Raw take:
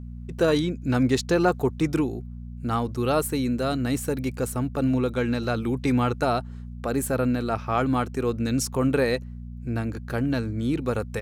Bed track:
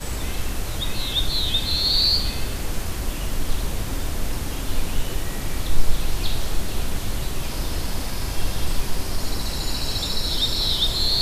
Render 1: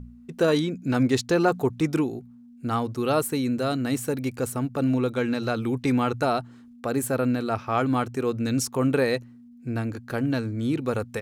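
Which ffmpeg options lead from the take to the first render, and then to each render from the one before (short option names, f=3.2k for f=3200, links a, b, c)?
-af "bandreject=f=60:t=h:w=4,bandreject=f=120:t=h:w=4,bandreject=f=180:t=h:w=4"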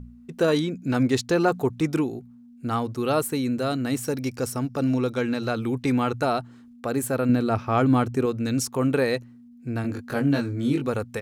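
-filter_complex "[0:a]asettb=1/sr,asplit=3[a][b][c];[a]atrim=end=4.034[d];[b]atrim=start=4.03:end=5.21,asetpts=PTS-STARTPTS,afade=t=in:d=0.004:c=qsin,afade=t=out:st=1.176:d=0.004:c=qsin,equalizer=f=5.4k:t=o:w=0.29:g=13[e];[c]atrim=start=5.206[f];[d][e]acrossfade=d=0.004:c1=hsin:c2=qsin[g];[g][f]acrossfade=d=0.004:c1=qsin:c2=hsin,asettb=1/sr,asplit=3[h][i][j];[h]atrim=end=7.294[k];[i]atrim=start=7.29:end=8.26,asetpts=PTS-STARTPTS,afade=t=in:d=0.004:c=qsin,afade=t=out:st=0.966:d=0.004:c=qsin,lowshelf=f=450:g=6.5[l];[j]atrim=start=8.256[m];[k][l]acrossfade=d=0.004:c1=hsin:c2=qsin[n];[n][m]acrossfade=d=0.004:c1=qsin:c2=hsin,asettb=1/sr,asplit=3[o][p][q];[o]atrim=end=9.824[r];[p]atrim=start=9.82:end=10.87,asetpts=PTS-STARTPTS,afade=t=in:d=0.004:c=qsin,afade=t=out:st=1.046:d=0.004:c=qsin,asplit=2[s][t];[t]adelay=21,volume=-2dB[u];[s][u]amix=inputs=2:normalize=0,atrim=end_sample=46305[v];[q]atrim=start=10.866[w];[r][v]acrossfade=d=0.004:c1=hsin:c2=qsin[x];[x][w]acrossfade=d=0.004:c1=qsin:c2=hsin"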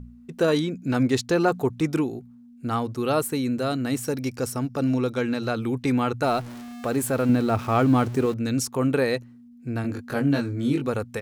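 -filter_complex "[0:a]asettb=1/sr,asplit=3[a][b][c];[a]atrim=end=6.244[d];[b]atrim=start=6.24:end=8.34,asetpts=PTS-STARTPTS,afade=t=in:d=0.004:c=qsin,afade=t=out:st=2.096:d=0.004:c=qsin,aeval=exprs='val(0)+0.5*0.0178*sgn(val(0))':c=same[e];[c]atrim=start=8.336[f];[d][e]acrossfade=d=0.004:c1=hsin:c2=qsin[g];[g][f]acrossfade=d=0.004:c1=qsin:c2=hsin"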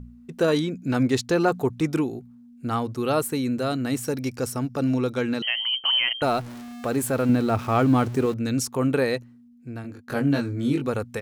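-filter_complex "[0:a]asettb=1/sr,asplit=3[a][b][c];[a]atrim=end=5.424[d];[b]atrim=start=5.42:end=6.22,asetpts=PTS-STARTPTS,afade=t=in:d=0.004:c=qsin,afade=t=out:st=0.796:d=0.004:c=qsin,lowpass=f=2.8k:t=q:w=0.5098,lowpass=f=2.8k:t=q:w=0.6013,lowpass=f=2.8k:t=q:w=0.9,lowpass=f=2.8k:t=q:w=2.563,afreqshift=-3300[e];[c]atrim=start=6.216[f];[d][e]acrossfade=d=0.004:c1=hsin:c2=qsin[g];[g][f]acrossfade=d=0.004:c1=qsin:c2=hsin,asplit=2[h][i];[h]atrim=end=10.08,asetpts=PTS-STARTPTS,afade=t=out:st=9.04:d=1.04:silence=0.211349[j];[i]atrim=start=10.08,asetpts=PTS-STARTPTS,afade=t=in:d=0.004:c=hsin:silence=0.211349[k];[j][k]concat=n=2:v=0:a=1"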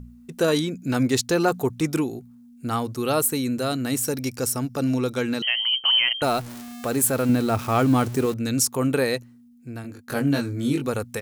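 -af "highshelf=f=5.5k:g=12"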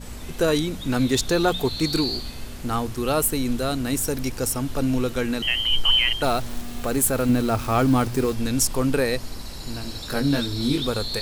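-filter_complex "[1:a]volume=-9.5dB[a];[0:a][a]amix=inputs=2:normalize=0"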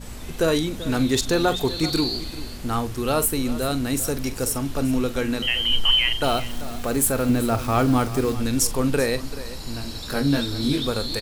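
-filter_complex "[0:a]asplit=2[a][b];[b]adelay=43,volume=-13.5dB[c];[a][c]amix=inputs=2:normalize=0,aecho=1:1:387:0.168"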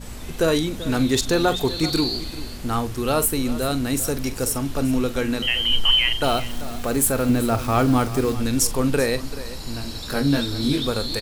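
-af "volume=1dB"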